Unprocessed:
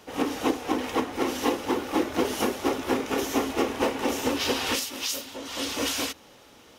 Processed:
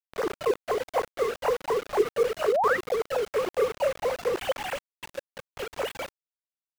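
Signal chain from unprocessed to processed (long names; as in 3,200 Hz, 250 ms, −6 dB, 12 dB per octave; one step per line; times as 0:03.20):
three sine waves on the formant tracks
bit reduction 5 bits
sound drawn into the spectrogram rise, 0:02.48–0:02.77, 370–2,100 Hz −22 dBFS
high-shelf EQ 2,200 Hz −11 dB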